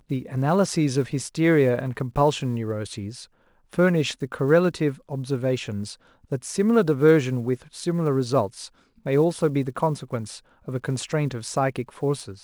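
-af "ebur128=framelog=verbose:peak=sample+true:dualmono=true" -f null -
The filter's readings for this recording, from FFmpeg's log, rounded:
Integrated loudness:
  I:         -20.8 LUFS
  Threshold: -31.2 LUFS
Loudness range:
  LRA:         3.3 LU
  Threshold: -41.1 LUFS
  LRA low:   -22.9 LUFS
  LRA high:  -19.6 LUFS
Sample peak:
  Peak:       -6.0 dBFS
True peak:
  Peak:       -6.0 dBFS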